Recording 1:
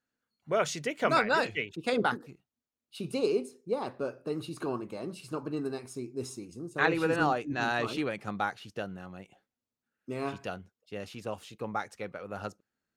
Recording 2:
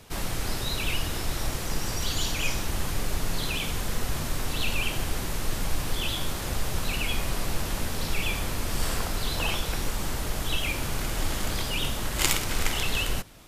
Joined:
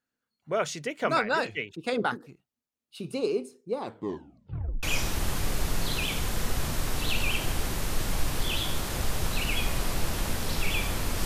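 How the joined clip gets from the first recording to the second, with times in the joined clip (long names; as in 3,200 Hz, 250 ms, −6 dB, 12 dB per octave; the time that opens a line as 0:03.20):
recording 1
0:03.80: tape stop 1.03 s
0:04.83: continue with recording 2 from 0:02.35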